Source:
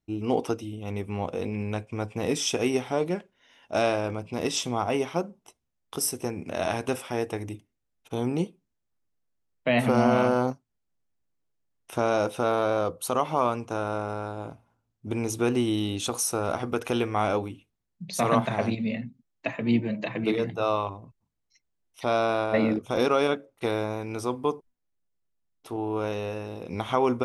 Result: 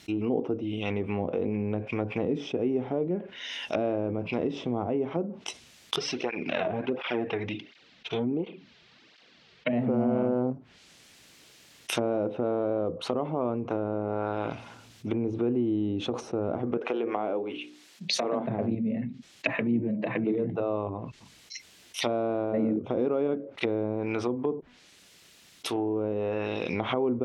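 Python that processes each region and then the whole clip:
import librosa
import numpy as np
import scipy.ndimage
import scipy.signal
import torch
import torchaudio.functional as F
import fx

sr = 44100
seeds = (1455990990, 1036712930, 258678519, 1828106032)

y = fx.chain(x, sr, fx.lowpass(hz=4400.0, slope=24),
    fx.peak_eq(hz=89.0, db=-6.5, octaves=0.36),
    fx.flanger_cancel(hz=1.4, depth_ms=4.0), at=(5.96, 9.73))
y = fx.chain(y, sr, fx.highpass(hz=350.0, slope=12),
    fx.hum_notches(base_hz=60, count=9), at=(16.77, 18.47))
y = fx.env_lowpass_down(y, sr, base_hz=430.0, full_db=-25.0)
y = fx.weighting(y, sr, curve='D')
y = fx.env_flatten(y, sr, amount_pct=50)
y = F.gain(torch.from_numpy(y), -1.5).numpy()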